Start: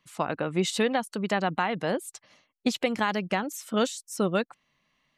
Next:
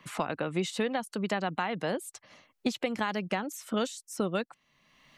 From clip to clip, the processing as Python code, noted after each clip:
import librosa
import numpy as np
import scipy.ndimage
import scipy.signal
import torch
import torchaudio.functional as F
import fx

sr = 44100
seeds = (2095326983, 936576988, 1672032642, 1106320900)

y = fx.band_squash(x, sr, depth_pct=70)
y = y * 10.0 ** (-4.5 / 20.0)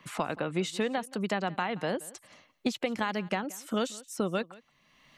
y = x + 10.0 ** (-21.0 / 20.0) * np.pad(x, (int(176 * sr / 1000.0), 0))[:len(x)]